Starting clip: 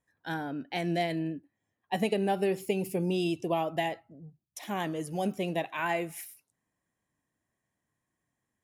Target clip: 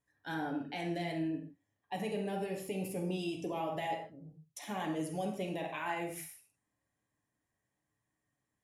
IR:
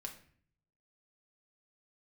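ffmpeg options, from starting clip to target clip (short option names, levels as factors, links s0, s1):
-filter_complex "[0:a]alimiter=level_in=1.12:limit=0.0631:level=0:latency=1:release=72,volume=0.891[s0];[1:a]atrim=start_sample=2205,atrim=end_sample=3969,asetrate=23814,aresample=44100[s1];[s0][s1]afir=irnorm=-1:irlink=0,volume=0.75"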